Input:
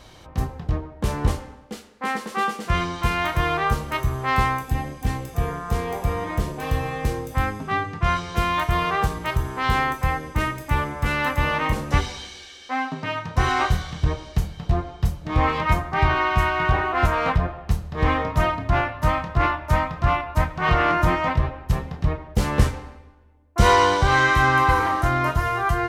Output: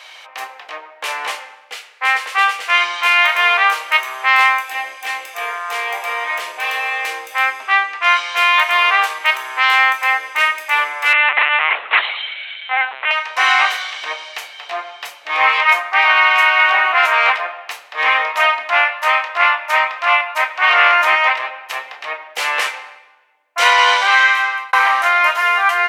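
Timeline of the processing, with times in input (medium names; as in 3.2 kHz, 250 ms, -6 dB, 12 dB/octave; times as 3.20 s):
11.13–13.11 s: LPC vocoder at 8 kHz pitch kept
23.92–24.73 s: fade out
whole clip: high-pass 640 Hz 24 dB/octave; peaking EQ 2.4 kHz +13 dB 1.2 oct; loudness maximiser +6 dB; trim -1 dB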